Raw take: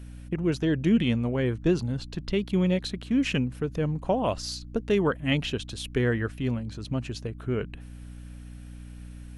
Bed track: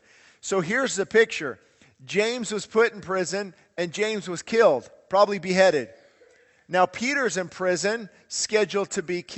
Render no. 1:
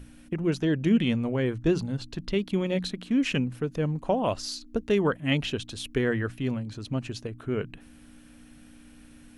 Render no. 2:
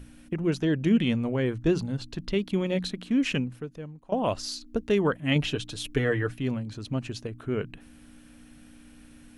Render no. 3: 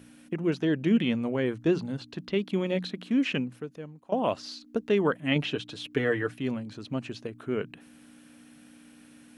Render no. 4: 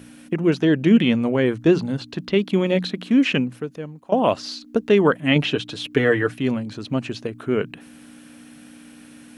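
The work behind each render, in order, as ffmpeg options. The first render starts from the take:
-af "bandreject=f=60:t=h:w=6,bandreject=f=120:t=h:w=6,bandreject=f=180:t=h:w=6"
-filter_complex "[0:a]asettb=1/sr,asplit=3[a][b][c];[a]atrim=end=5.354[d];[b]atrim=start=5.35:end=6.34,asetpts=PTS-STARTPTS,afade=t=in:d=0.004:c=qsin,afade=t=out:st=0.986:d=0.004:c=qsin,aecho=1:1:6.7:0.65,atrim=end_sample=43659[e];[c]atrim=start=6.336[f];[d][e]acrossfade=d=0.004:c1=hsin:c2=qsin[g];[g][f]acrossfade=d=0.004:c1=qsin:c2=hsin,asplit=2[h][i];[h]atrim=end=4.12,asetpts=PTS-STARTPTS,afade=t=out:st=3.32:d=0.8:c=qua:silence=0.133352[j];[i]atrim=start=4.12,asetpts=PTS-STARTPTS,afade=t=in:d=0.004:c=hsin:silence=0.133352[k];[j][k]concat=n=2:v=0:a=1"
-filter_complex "[0:a]highpass=170,acrossover=split=4400[a][b];[b]acompressor=threshold=-55dB:ratio=4:attack=1:release=60[c];[a][c]amix=inputs=2:normalize=0"
-af "volume=8.5dB,alimiter=limit=-3dB:level=0:latency=1"

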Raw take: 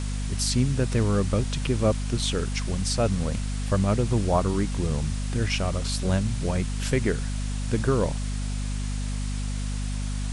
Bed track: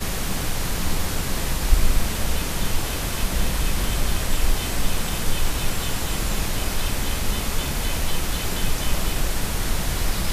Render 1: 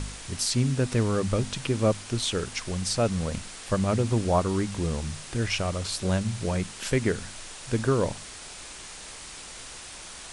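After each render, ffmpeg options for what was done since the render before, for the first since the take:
-af "bandreject=f=50:t=h:w=4,bandreject=f=100:t=h:w=4,bandreject=f=150:t=h:w=4,bandreject=f=200:t=h:w=4,bandreject=f=250:t=h:w=4"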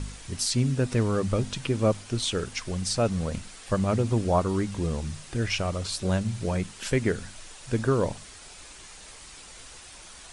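-af "afftdn=nr=6:nf=-42"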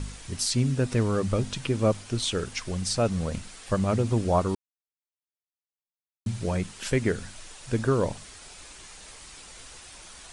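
-filter_complex "[0:a]asplit=3[a][b][c];[a]atrim=end=4.55,asetpts=PTS-STARTPTS,afade=t=out:st=4.546:d=0.004:c=hsin[d];[b]atrim=start=4.55:end=6.26,asetpts=PTS-STARTPTS,volume=0[e];[c]atrim=start=6.26,asetpts=PTS-STARTPTS,afade=t=in:d=0.004:c=hsin[f];[d][e][f]concat=n=3:v=0:a=1"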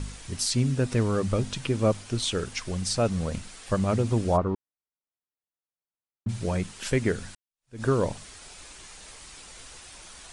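-filter_complex "[0:a]asplit=3[a][b][c];[a]afade=t=out:st=4.36:d=0.02[d];[b]lowpass=1.5k,afade=t=in:st=4.36:d=0.02,afade=t=out:st=6.28:d=0.02[e];[c]afade=t=in:st=6.28:d=0.02[f];[d][e][f]amix=inputs=3:normalize=0,asplit=2[g][h];[g]atrim=end=7.35,asetpts=PTS-STARTPTS,afade=t=out:st=7.346:d=0.004:c=hsin[i];[h]atrim=start=7.35,asetpts=PTS-STARTPTS,afade=t=in:d=0.48:c=exp[j];[i][j]concat=n=2:v=0:a=1"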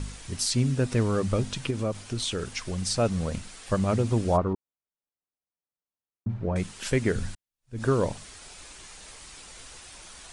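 -filter_complex "[0:a]asettb=1/sr,asplit=3[a][b][c];[a]atrim=end=1.704[d];[b]atrim=start=1.7:end=2.78,asetpts=PTS-STARTPTS,afade=t=in:d=0.004:c=qsin,afade=t=out:st=1.076:d=0.004:c=qsin,acompressor=threshold=-26dB:ratio=2.5:attack=3.2:release=140:knee=1:detection=peak[e];[c]atrim=start=2.776[f];[d][e]acrossfade=d=0.004:c1=hsin:c2=qsin[g];[g][f]acrossfade=d=0.004:c1=qsin:c2=hsin,asettb=1/sr,asplit=3[h][i][j];[h]atrim=end=4.534[k];[i]atrim=start=4.53:end=6.56,asetpts=PTS-STARTPTS,afade=t=in:d=0.004:c=qsin,afade=t=out:st=2.026:d=0.004:c=qsin,lowpass=1.2k[l];[j]atrim=start=6.556[m];[k][l]acrossfade=d=0.004:c1=hsin:c2=qsin[n];[n][m]acrossfade=d=0.004:c1=qsin:c2=hsin,asettb=1/sr,asplit=3[o][p][q];[o]atrim=end=7.154[r];[p]atrim=start=7.15:end=7.79,asetpts=PTS-STARTPTS,afade=t=in:d=0.004:c=qsin,afade=t=out:st=0.636:d=0.004:c=qsin,lowshelf=f=200:g=11.5[s];[q]atrim=start=7.786[t];[r][s]acrossfade=d=0.004:c1=hsin:c2=qsin[u];[u][t]acrossfade=d=0.004:c1=qsin:c2=hsin"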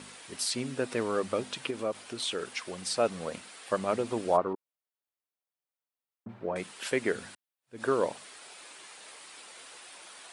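-af "highpass=370,equalizer=f=6.3k:w=1.5:g=-7"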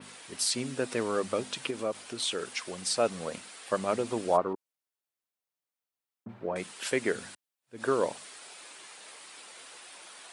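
-af "highpass=72,adynamicequalizer=threshold=0.00355:dfrequency=7500:dqfactor=0.72:tfrequency=7500:tqfactor=0.72:attack=5:release=100:ratio=0.375:range=2:mode=boostabove:tftype=bell"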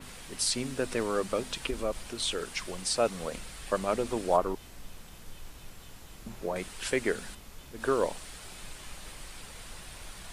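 -filter_complex "[1:a]volume=-24dB[a];[0:a][a]amix=inputs=2:normalize=0"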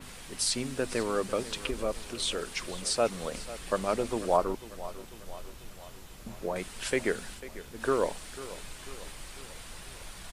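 -af "aecho=1:1:495|990|1485|1980|2475:0.158|0.0872|0.0479|0.0264|0.0145"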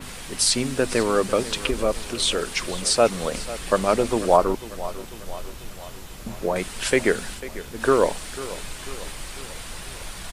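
-af "volume=9dB,alimiter=limit=-3dB:level=0:latency=1"

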